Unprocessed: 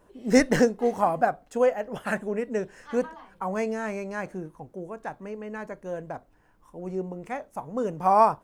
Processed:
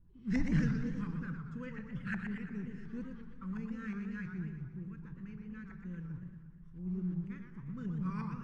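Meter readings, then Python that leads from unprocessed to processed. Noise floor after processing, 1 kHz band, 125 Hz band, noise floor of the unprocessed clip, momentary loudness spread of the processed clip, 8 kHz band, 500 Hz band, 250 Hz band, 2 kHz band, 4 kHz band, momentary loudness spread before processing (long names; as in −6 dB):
−53 dBFS, −27.5 dB, +1.5 dB, −61 dBFS, 12 LU, below −20 dB, −27.5 dB, −7.0 dB, −12.5 dB, below −15 dB, 16 LU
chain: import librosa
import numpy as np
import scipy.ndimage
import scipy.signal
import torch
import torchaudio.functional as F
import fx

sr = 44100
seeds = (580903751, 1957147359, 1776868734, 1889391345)

y = scipy.signal.sosfilt(scipy.signal.cheby1(2, 1.0, [110.0, 4500.0], 'bandstop', fs=sr, output='sos'), x)
y = fx.mod_noise(y, sr, seeds[0], snr_db=25)
y = fx.filter_lfo_lowpass(y, sr, shape='saw_up', hz=2.8, low_hz=790.0, high_hz=1700.0, q=2.6)
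y = fx.room_shoebox(y, sr, seeds[1], volume_m3=2800.0, walls='mixed', distance_m=0.73)
y = fx.echo_warbled(y, sr, ms=117, feedback_pct=56, rate_hz=2.8, cents=216, wet_db=-6.5)
y = y * 10.0 ** (4.5 / 20.0)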